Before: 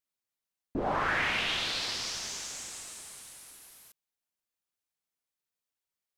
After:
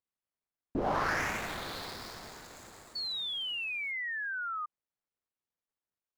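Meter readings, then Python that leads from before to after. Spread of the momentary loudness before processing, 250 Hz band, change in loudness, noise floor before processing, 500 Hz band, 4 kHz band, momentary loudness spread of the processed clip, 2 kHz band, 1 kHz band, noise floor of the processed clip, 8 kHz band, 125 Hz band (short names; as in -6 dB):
19 LU, 0.0 dB, -3.0 dB, under -85 dBFS, 0.0 dB, -2.0 dB, 15 LU, -0.5 dB, 0.0 dB, under -85 dBFS, -10.5 dB, +0.5 dB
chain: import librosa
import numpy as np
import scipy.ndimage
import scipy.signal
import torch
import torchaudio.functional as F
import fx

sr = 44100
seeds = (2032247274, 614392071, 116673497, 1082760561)

y = scipy.signal.medfilt(x, 15)
y = fx.spec_paint(y, sr, seeds[0], shape='fall', start_s=2.95, length_s=1.71, low_hz=1200.0, high_hz=4500.0, level_db=-36.0)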